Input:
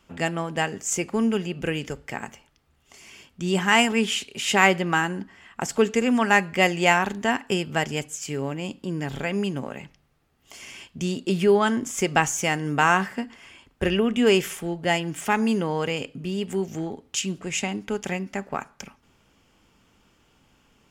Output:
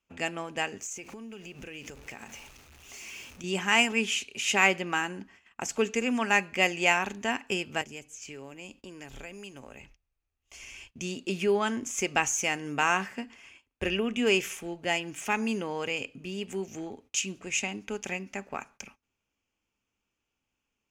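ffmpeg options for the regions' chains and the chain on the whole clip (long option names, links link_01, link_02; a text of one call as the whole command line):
ffmpeg -i in.wav -filter_complex "[0:a]asettb=1/sr,asplit=3[link_01][link_02][link_03];[link_01]atrim=end=0.824[link_04];[link_02]atrim=start=0.82:end=3.44,asetpts=PTS-STARTPTS,afade=type=in:duration=0.004:curve=qsin,afade=type=out:start_time=2.616:duration=0.004:curve=qsin,aeval=exprs='val(0)+0.5*0.0106*sgn(val(0))':channel_layout=same,acompressor=threshold=-32dB:ratio=12:attack=3.2:release=140:knee=1:detection=peak[link_05];[link_03]atrim=start=3.436[link_06];[link_04][link_05]acrossfade=duration=0.004:curve1=hsin:curve2=qsin[link_07];[link_07][link_06]acrossfade=duration=0.004:curve1=qsin:curve2=hsin,asettb=1/sr,asplit=3[link_08][link_09][link_10];[link_08]atrim=end=7.814[link_11];[link_09]atrim=start=7.81:end=10.91,asetpts=PTS-STARTPTS,afade=type=in:duration=0.004:curve=qsin,afade=type=out:start_time=3.096:duration=0.004:curve=qsin,acrossover=split=510|6200[link_12][link_13][link_14];[link_12]acompressor=threshold=-36dB:ratio=4[link_15];[link_13]acompressor=threshold=-41dB:ratio=4[link_16];[link_14]acompressor=threshold=-50dB:ratio=4[link_17];[link_15][link_16][link_17]amix=inputs=3:normalize=0,asubboost=boost=11:cutoff=63[link_18];[link_10]atrim=start=10.906[link_19];[link_11][link_18]acrossfade=duration=0.004:curve1=hsin:curve2=qsin[link_20];[link_20][link_19]acrossfade=duration=0.004:curve1=qsin:curve2=hsin,agate=range=-17dB:threshold=-47dB:ratio=16:detection=peak,equalizer=frequency=160:width_type=o:width=0.33:gain=-8,equalizer=frequency=2500:width_type=o:width=0.33:gain=9,equalizer=frequency=6300:width_type=o:width=0.33:gain=8,volume=-7dB" out.wav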